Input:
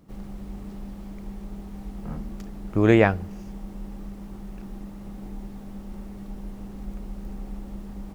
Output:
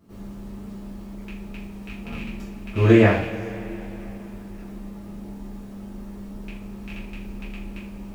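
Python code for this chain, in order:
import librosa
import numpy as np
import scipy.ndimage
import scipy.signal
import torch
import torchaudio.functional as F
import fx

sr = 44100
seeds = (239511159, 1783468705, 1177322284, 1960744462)

y = fx.rattle_buzz(x, sr, strikes_db=-29.0, level_db=-22.0)
y = fx.rev_double_slope(y, sr, seeds[0], early_s=0.44, late_s=3.6, knee_db=-19, drr_db=-8.0)
y = y * 10.0 ** (-7.0 / 20.0)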